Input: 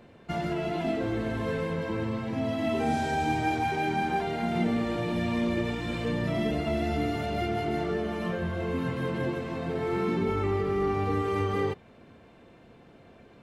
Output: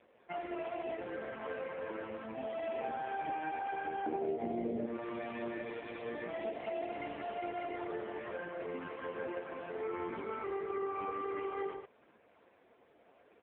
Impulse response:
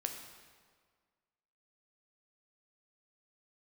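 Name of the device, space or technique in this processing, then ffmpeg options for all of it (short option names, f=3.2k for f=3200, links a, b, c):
voicemail: -filter_complex "[0:a]asettb=1/sr,asplit=3[a][b][c];[a]atrim=end=4.064[d];[b]atrim=start=4.06:end=4.86,asetpts=PTS-STARTPTS,afade=t=in:d=0.004:c=qsin,afade=t=out:st=0.796:d=0.004:c=qsin,lowshelf=f=750:t=q:w=1.5:g=13.5[e];[c]atrim=start=4.856[f];[d][e]acrossfade=d=0.004:c1=hsin:c2=qsin[g];[g][f]acrossfade=d=0.004:c1=qsin:c2=hsin,highpass=420,lowpass=2.9k,asplit=2[h][i];[i]adelay=116.6,volume=-8dB,highshelf=f=4k:g=-2.62[j];[h][j]amix=inputs=2:normalize=0,acompressor=threshold=-28dB:ratio=8,volume=-4dB" -ar 8000 -c:a libopencore_amrnb -b:a 4750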